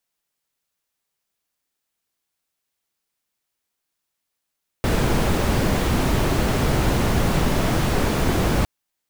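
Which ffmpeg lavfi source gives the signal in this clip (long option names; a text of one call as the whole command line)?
ffmpeg -f lavfi -i "anoisesrc=color=brown:amplitude=0.525:duration=3.81:sample_rate=44100:seed=1" out.wav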